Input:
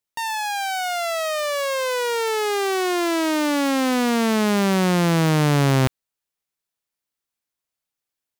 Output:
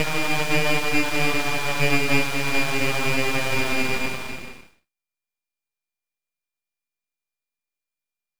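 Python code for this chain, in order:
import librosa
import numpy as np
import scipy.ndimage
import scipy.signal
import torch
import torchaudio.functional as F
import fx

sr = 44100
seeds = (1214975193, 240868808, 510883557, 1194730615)

y = fx.paulstretch(x, sr, seeds[0], factor=7.4, window_s=0.25, from_s=5.34)
y = y * np.sin(2.0 * np.pi * 1200.0 * np.arange(len(y)) / sr)
y = np.abs(y)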